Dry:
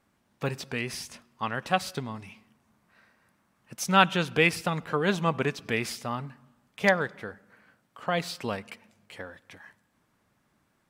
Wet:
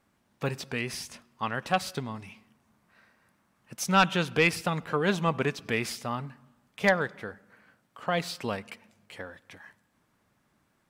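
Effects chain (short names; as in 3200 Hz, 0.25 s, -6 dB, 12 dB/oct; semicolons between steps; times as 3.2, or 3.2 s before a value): sine folder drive 3 dB, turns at -4 dBFS; gain -7 dB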